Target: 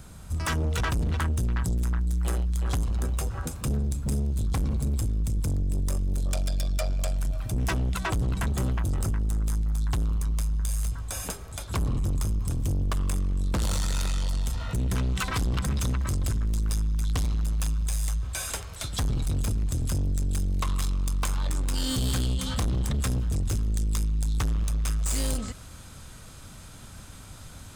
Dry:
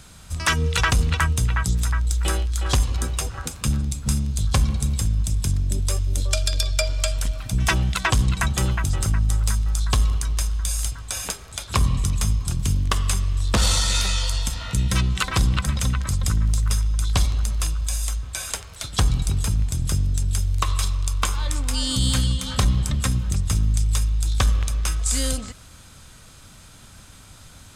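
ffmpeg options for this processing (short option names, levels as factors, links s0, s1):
-af "asetnsamples=n=441:p=0,asendcmd='15.02 equalizer g -4.5',equalizer=f=3900:w=0.35:g=-10.5,asoftclip=type=tanh:threshold=0.0531,volume=1.33"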